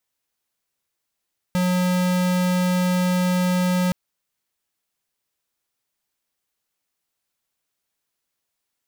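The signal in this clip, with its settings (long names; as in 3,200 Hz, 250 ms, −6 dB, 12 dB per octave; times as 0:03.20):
tone square 181 Hz −20 dBFS 2.37 s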